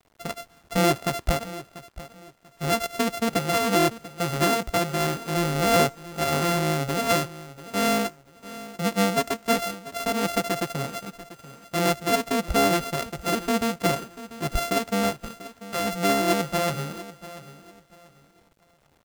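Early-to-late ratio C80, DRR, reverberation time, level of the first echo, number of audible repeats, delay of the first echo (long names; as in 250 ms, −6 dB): no reverb audible, no reverb audible, no reverb audible, −16.0 dB, 2, 690 ms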